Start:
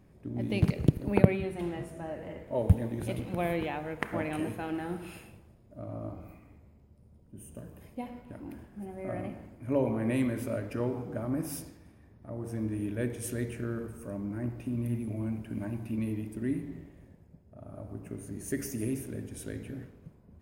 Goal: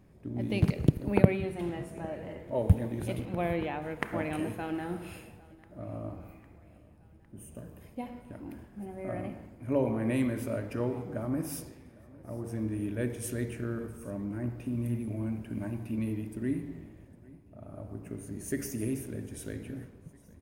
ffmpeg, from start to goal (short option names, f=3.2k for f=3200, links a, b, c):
-filter_complex "[0:a]asettb=1/sr,asplit=3[a][b][c];[a]atrim=end=3.254[d];[b]atrim=start=3.25:end=3.82,asetpts=PTS-STARTPTS,afade=t=in:d=0.004:c=qsin,afade=t=out:st=0.566:d=0.004:c=qsin,highshelf=f=4.9k:g=-8.5[e];[c]atrim=start=3.816[f];[d][e]acrossfade=d=0.004:c1=hsin:c2=qsin[g];[g][f]acrossfade=d=0.004:c1=qsin:c2=hsin,aecho=1:1:805|1610|2415|3220:0.0668|0.0394|0.0233|0.0137"